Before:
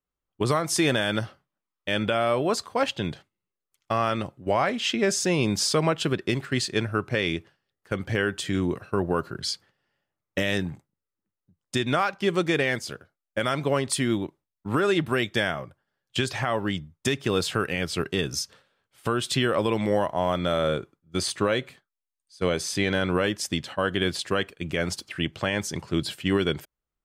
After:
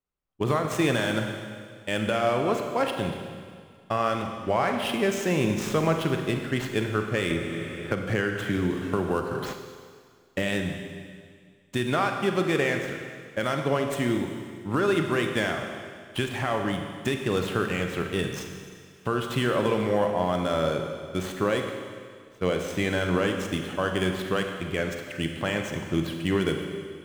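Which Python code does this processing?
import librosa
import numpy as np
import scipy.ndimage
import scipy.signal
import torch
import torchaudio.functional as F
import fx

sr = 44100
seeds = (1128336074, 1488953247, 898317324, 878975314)

y = scipy.ndimage.median_filter(x, 9, mode='constant')
y = fx.rev_schroeder(y, sr, rt60_s=2.0, comb_ms=33, drr_db=4.0)
y = fx.band_squash(y, sr, depth_pct=70, at=(7.3, 9.53))
y = y * librosa.db_to_amplitude(-1.5)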